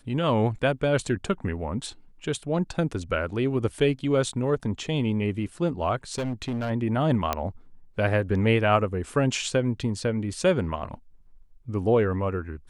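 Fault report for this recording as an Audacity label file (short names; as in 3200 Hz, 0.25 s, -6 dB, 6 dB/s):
6.140000	6.710000	clipped -25 dBFS
7.330000	7.330000	pop -10 dBFS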